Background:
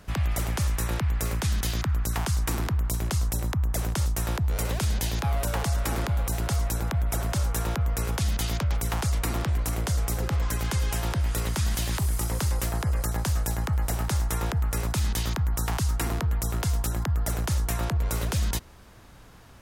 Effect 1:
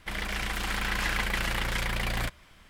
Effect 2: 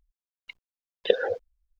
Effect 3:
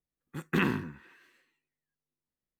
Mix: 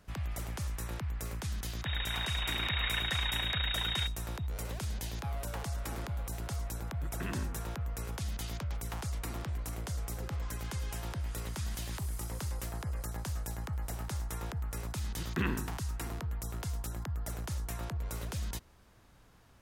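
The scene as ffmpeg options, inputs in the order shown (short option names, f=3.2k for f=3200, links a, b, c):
-filter_complex "[3:a]asplit=2[a][b];[0:a]volume=-11dB[c];[1:a]lowpass=f=3.2k:t=q:w=0.5098,lowpass=f=3.2k:t=q:w=0.6013,lowpass=f=3.2k:t=q:w=0.9,lowpass=f=3.2k:t=q:w=2.563,afreqshift=-3800[d];[a]alimiter=limit=-22dB:level=0:latency=1:release=71[e];[d]atrim=end=2.69,asetpts=PTS-STARTPTS,volume=-5.5dB,afade=t=in:d=0.004:c=hsin,afade=t=out:st=2.686:d=0.004:c=hsin,adelay=1780[f];[e]atrim=end=2.59,asetpts=PTS-STARTPTS,volume=-8.5dB,afade=t=in:d=0.004:c=hsin,afade=t=out:st=2.586:d=0.004:c=hsin,adelay=6670[g];[b]atrim=end=2.59,asetpts=PTS-STARTPTS,volume=-6.5dB,afade=t=in:d=0.004:c=hsin,afade=t=out:st=2.586:d=0.004:c=hsin,adelay=14830[h];[c][f][g][h]amix=inputs=4:normalize=0"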